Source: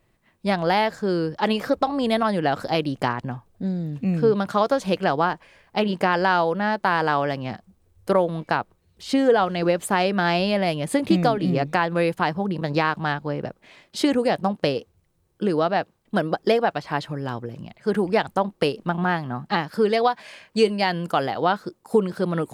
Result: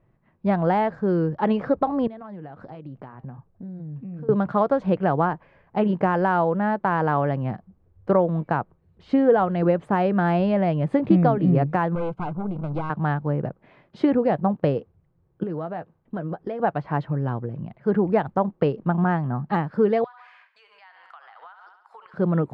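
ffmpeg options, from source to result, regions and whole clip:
ffmpeg -i in.wav -filter_complex "[0:a]asettb=1/sr,asplit=3[link_01][link_02][link_03];[link_01]atrim=end=2.074[link_04];[link_02]atrim=start=2.07:end=4.29,asetpts=PTS-STARTPTS,afade=type=in:duration=0.004:curve=qsin,afade=type=out:start_time=2.216:duration=0.004:curve=qsin,flanger=delay=0.3:depth=5.5:regen=-76:speed=1.3:shape=triangular,acompressor=threshold=-37dB:ratio=6:attack=3.2:release=140:knee=1:detection=peak[link_05];[link_03]atrim=start=4.286[link_06];[link_04][link_05]acrossfade=duration=0.004:curve1=hsin:curve2=qsin[link_07];[link_07][link_06]acrossfade=duration=0.004:curve1=qsin:curve2=hsin,asettb=1/sr,asplit=3[link_08][link_09][link_10];[link_08]atrim=end=11.954[link_11];[link_09]atrim=start=11.95:end=12.9,asetpts=PTS-STARTPTS,afade=type=in:duration=0.004:curve=qsin,afade=type=out:start_time=0.946:duration=0.004:curve=qsin,aeval=exprs='(tanh(14.1*val(0)+0.75)-tanh(0.75))/14.1':channel_layout=same,asuperstop=centerf=1800:order=8:qfactor=3.9[link_12];[link_10]atrim=start=12.896[link_13];[link_11][link_12]acrossfade=duration=0.004:curve1=hsin:curve2=qsin[link_14];[link_14][link_13]acrossfade=duration=0.004:curve1=qsin:curve2=hsin,asettb=1/sr,asplit=3[link_15][link_16][link_17];[link_15]atrim=end=15.434[link_18];[link_16]atrim=start=15.43:end=16.6,asetpts=PTS-STARTPTS,afade=type=in:duration=0.004:curve=qsin,afade=type=out:start_time=1.166:duration=0.004:curve=qsin,asplit=2[link_19][link_20];[link_20]adelay=12,volume=-11dB[link_21];[link_19][link_21]amix=inputs=2:normalize=0,atrim=end_sample=51597,acompressor=threshold=-30dB:ratio=3:attack=3.2:release=140:knee=1:detection=peak[link_22];[link_17]atrim=start=16.596[link_23];[link_18][link_22]acrossfade=duration=0.004:curve1=hsin:curve2=qsin[link_24];[link_24][link_23]acrossfade=duration=0.004:curve1=qsin:curve2=hsin,asettb=1/sr,asplit=3[link_25][link_26][link_27];[link_25]atrim=end=20.044[link_28];[link_26]atrim=start=20.04:end=22.14,asetpts=PTS-STARTPTS,afade=type=in:duration=0.004:curve=qsin,afade=type=out:start_time=2.096:duration=0.004:curve=qsin,highpass=frequency=1100:width=0.5412,highpass=frequency=1100:width=1.3066,aecho=1:1:69|138|207|276|345:0.2|0.104|0.054|0.0281|0.0146,atrim=end_sample=92610,acompressor=threshold=-39dB:ratio=10:attack=3.2:release=140:knee=1:detection=peak[link_29];[link_27]atrim=start=22.136[link_30];[link_28][link_29]acrossfade=duration=0.004:curve1=hsin:curve2=qsin[link_31];[link_31][link_30]acrossfade=duration=0.004:curve1=qsin:curve2=hsin,lowpass=1400,equalizer=frequency=140:width_type=o:width=0.85:gain=7,deesser=0.95" out.wav

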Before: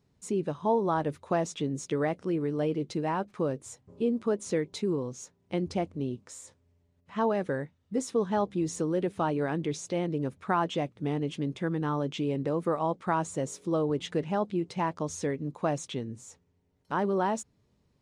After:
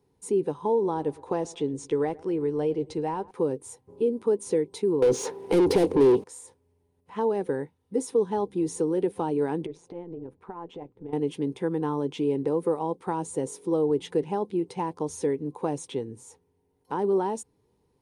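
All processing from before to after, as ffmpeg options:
ffmpeg -i in.wav -filter_complex "[0:a]asettb=1/sr,asplit=3[link_01][link_02][link_03];[link_01]atrim=end=0.724[link_04];[link_02]atrim=start=0.72:end=3.31,asetpts=PTS-STARTPTS,afade=type=in:duration=0.004:curve=qsin,afade=type=out:start_time=2.586:duration=0.004:curve=qsin,lowpass=frequency=8500:width=0.5412,lowpass=frequency=8500:width=1.3066,asubboost=boost=10.5:cutoff=77,asplit=2[link_05][link_06];[link_06]adelay=109,lowpass=frequency=1900:poles=1,volume=-23dB,asplit=2[link_07][link_08];[link_08]adelay=109,lowpass=frequency=1900:poles=1,volume=0.43,asplit=2[link_09][link_10];[link_10]adelay=109,lowpass=frequency=1900:poles=1,volume=0.43[link_11];[link_05][link_07][link_09][link_11]amix=inputs=4:normalize=0,atrim=end_sample=114219[link_12];[link_03]atrim=start=3.306[link_13];[link_04][link_12]acrossfade=duration=0.004:curve1=hsin:curve2=qsin[link_14];[link_14][link_13]acrossfade=duration=0.004:curve1=qsin:curve2=hsin,asettb=1/sr,asplit=3[link_15][link_16][link_17];[link_15]atrim=end=5.024[link_18];[link_16]atrim=start=5.02:end=6.24,asetpts=PTS-STARTPTS,afade=type=in:duration=0.004:curve=qsin,afade=type=out:start_time=1.216:duration=0.004:curve=qsin,acrossover=split=5200[link_19][link_20];[link_20]acompressor=threshold=-57dB:ratio=4:attack=1:release=60[link_21];[link_19][link_21]amix=inputs=2:normalize=0,equalizer=frequency=430:width_type=o:width=0.85:gain=7,asplit=2[link_22][link_23];[link_23]highpass=frequency=720:poles=1,volume=36dB,asoftclip=type=tanh:threshold=-14.5dB[link_24];[link_22][link_24]amix=inputs=2:normalize=0,lowpass=frequency=2700:poles=1,volume=-6dB[link_25];[link_17]atrim=start=6.236[link_26];[link_18][link_25]acrossfade=duration=0.004:curve1=hsin:curve2=qsin[link_27];[link_27][link_26]acrossfade=duration=0.004:curve1=qsin:curve2=hsin,asettb=1/sr,asplit=3[link_28][link_29][link_30];[link_28]atrim=end=9.664[link_31];[link_29]atrim=start=9.66:end=11.13,asetpts=PTS-STARTPTS,afade=type=in:duration=0.004:curve=qsin,afade=type=out:start_time=1.466:duration=0.004:curve=qsin,lowpass=frequency=1200:poles=1,acompressor=threshold=-35dB:ratio=6:attack=3.2:release=140:knee=1:detection=peak,tremolo=f=170:d=0.621[link_32];[link_30]atrim=start=11.126[link_33];[link_31][link_32]acrossfade=duration=0.004:curve1=hsin:curve2=qsin[link_34];[link_34][link_33]acrossfade=duration=0.004:curve1=qsin:curve2=hsin,superequalizer=6b=2:7b=3.16:9b=2.82:16b=3.16,acrossover=split=480|3000[link_35][link_36][link_37];[link_36]acompressor=threshold=-28dB:ratio=6[link_38];[link_35][link_38][link_37]amix=inputs=3:normalize=0,volume=-2.5dB" out.wav

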